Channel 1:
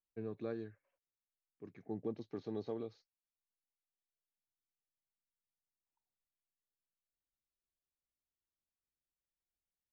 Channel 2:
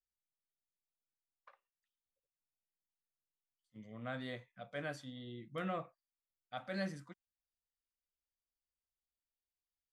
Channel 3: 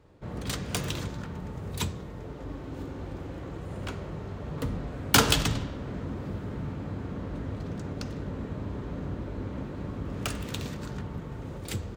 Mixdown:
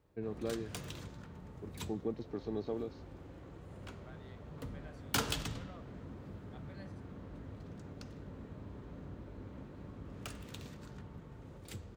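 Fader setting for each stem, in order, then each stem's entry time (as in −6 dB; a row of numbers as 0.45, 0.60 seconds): +3.0, −15.0, −13.0 decibels; 0.00, 0.00, 0.00 seconds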